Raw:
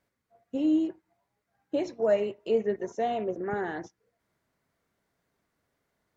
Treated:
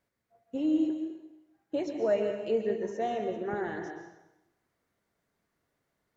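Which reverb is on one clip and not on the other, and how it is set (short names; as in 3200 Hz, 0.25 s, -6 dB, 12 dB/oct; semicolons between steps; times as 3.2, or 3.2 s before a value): plate-style reverb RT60 0.95 s, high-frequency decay 0.95×, pre-delay 0.115 s, DRR 5 dB; gain -3 dB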